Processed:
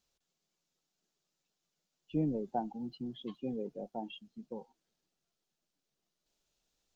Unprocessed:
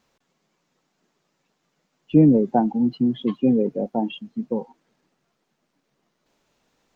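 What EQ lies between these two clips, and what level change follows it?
dynamic EQ 880 Hz, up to +6 dB, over -37 dBFS, Q 1.5; ten-band EQ 125 Hz -9 dB, 250 Hz -11 dB, 500 Hz -7 dB, 1000 Hz -11 dB, 2000 Hz -10 dB; -6.5 dB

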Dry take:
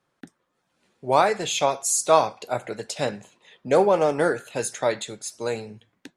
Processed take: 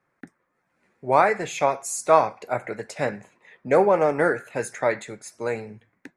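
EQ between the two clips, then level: resonant high shelf 2600 Hz -6.5 dB, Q 3; 0.0 dB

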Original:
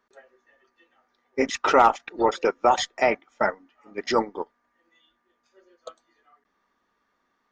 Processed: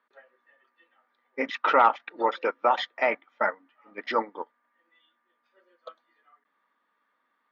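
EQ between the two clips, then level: speaker cabinet 340–3500 Hz, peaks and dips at 390 Hz -10 dB, 720 Hz -6 dB, 2700 Hz -3 dB; 0.0 dB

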